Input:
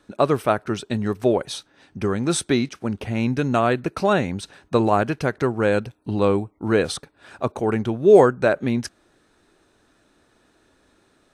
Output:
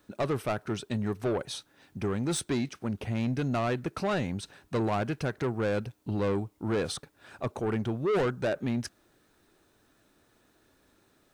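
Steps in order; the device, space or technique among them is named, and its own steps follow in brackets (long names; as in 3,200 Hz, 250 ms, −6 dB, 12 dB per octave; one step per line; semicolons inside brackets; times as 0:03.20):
open-reel tape (soft clipping −18 dBFS, distortion −8 dB; parametric band 120 Hz +3 dB 1.15 octaves; white noise bed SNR 44 dB)
level −6 dB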